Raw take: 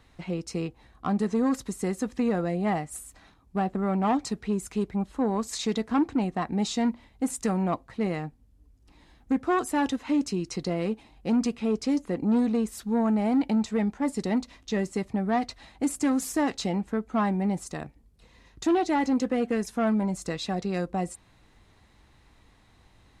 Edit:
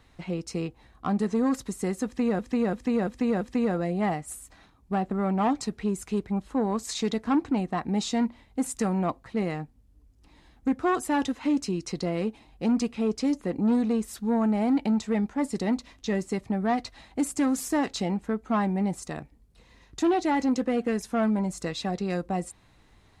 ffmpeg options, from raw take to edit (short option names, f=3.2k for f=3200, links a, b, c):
-filter_complex "[0:a]asplit=5[a][b][c][d][e];[a]atrim=end=2.392[f];[b]atrim=start=2.048:end=2.392[g];[c]atrim=start=2.048:end=2.392[h];[d]atrim=start=2.048:end=2.392[i];[e]atrim=start=2.048[j];[f][g]acrossfade=d=0.004:c1=hsin:c2=hsin[k];[k][h]acrossfade=d=0.004:c1=hsin:c2=hsin[l];[l][i]acrossfade=d=0.004:c1=hsin:c2=hsin[m];[m][j]acrossfade=d=0.004:c1=hsin:c2=hsin"